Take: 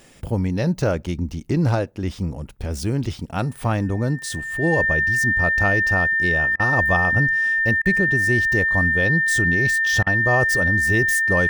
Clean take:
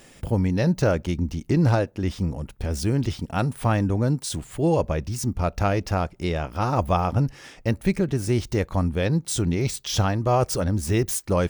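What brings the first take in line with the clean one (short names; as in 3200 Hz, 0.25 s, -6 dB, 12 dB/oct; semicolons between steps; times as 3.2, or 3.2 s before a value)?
notch 1800 Hz, Q 30; interpolate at 6.56/7.82/10.03, 34 ms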